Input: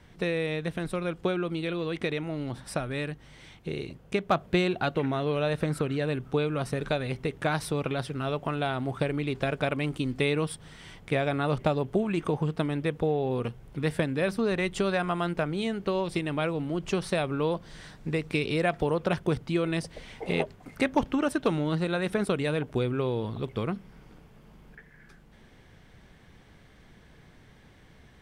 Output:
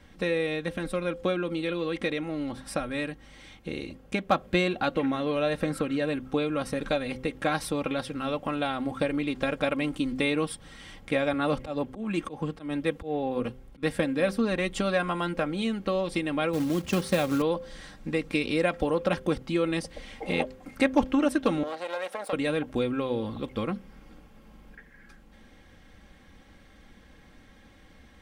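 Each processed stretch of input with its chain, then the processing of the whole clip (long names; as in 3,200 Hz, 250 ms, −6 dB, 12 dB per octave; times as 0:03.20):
0:11.33–0:13.83: volume swells 121 ms + multiband upward and downward expander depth 40%
0:16.53–0:17.42: high-pass filter 64 Hz 24 dB per octave + low-shelf EQ 190 Hz +9.5 dB + floating-point word with a short mantissa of 2 bits
0:21.63–0:22.33: gain on one half-wave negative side −12 dB + high-pass with resonance 620 Hz, resonance Q 2.5 + downward compressor 2 to 1, threshold −32 dBFS
whole clip: notch filter 900 Hz, Q 27; comb filter 3.7 ms, depth 60%; hum removal 129.2 Hz, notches 4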